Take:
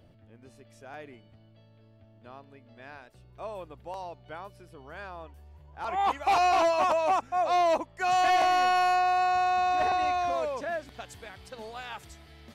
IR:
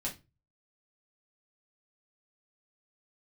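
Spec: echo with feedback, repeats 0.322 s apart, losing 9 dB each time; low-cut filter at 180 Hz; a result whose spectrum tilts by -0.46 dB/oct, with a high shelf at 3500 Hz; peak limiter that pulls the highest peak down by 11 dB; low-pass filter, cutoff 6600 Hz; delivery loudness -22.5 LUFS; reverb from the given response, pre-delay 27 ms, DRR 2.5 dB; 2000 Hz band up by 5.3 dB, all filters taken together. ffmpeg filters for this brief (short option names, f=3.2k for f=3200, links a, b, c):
-filter_complex "[0:a]highpass=180,lowpass=6.6k,equalizer=f=2k:t=o:g=9,highshelf=f=3.5k:g=-5,alimiter=limit=-23.5dB:level=0:latency=1,aecho=1:1:322|644|966|1288:0.355|0.124|0.0435|0.0152,asplit=2[a][b];[1:a]atrim=start_sample=2205,adelay=27[c];[b][c]afir=irnorm=-1:irlink=0,volume=-4dB[d];[a][d]amix=inputs=2:normalize=0,volume=5.5dB"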